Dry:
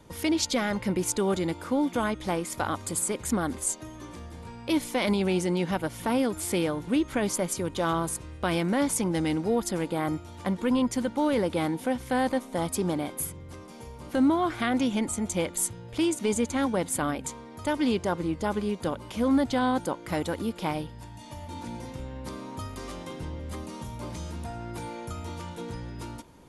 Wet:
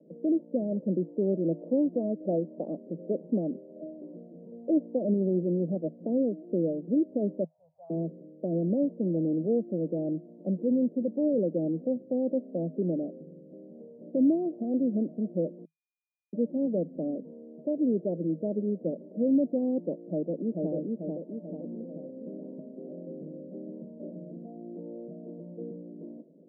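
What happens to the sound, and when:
1.44–5.01 LFO low-pass saw up 1.3 Hz 580–2400 Hz
7.44–7.9 Chebyshev band-stop 110–740 Hz, order 4
15.65–16.33 bleep 2440 Hz -9.5 dBFS
20–20.73 echo throw 0.44 s, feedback 55%, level -2.5 dB
whole clip: Chebyshev band-pass 160–640 Hz, order 5

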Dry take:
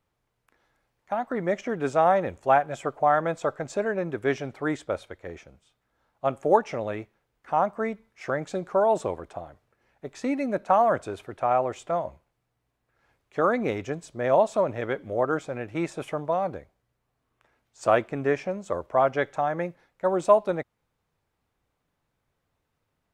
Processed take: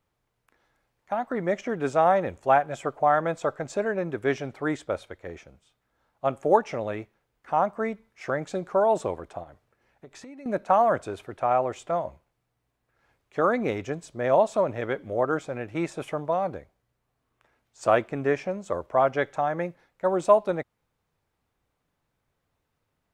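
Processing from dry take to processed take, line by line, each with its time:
9.43–10.46 compressor, threshold -42 dBFS

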